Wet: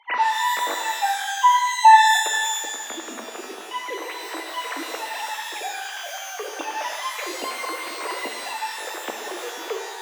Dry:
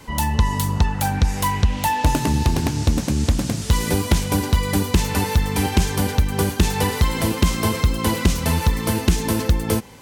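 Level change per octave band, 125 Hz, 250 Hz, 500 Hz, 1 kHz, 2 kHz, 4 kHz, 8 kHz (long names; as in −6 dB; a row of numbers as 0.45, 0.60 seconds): below −40 dB, −19.5 dB, −7.0 dB, +6.5 dB, +4.0 dB, −0.5 dB, −2.5 dB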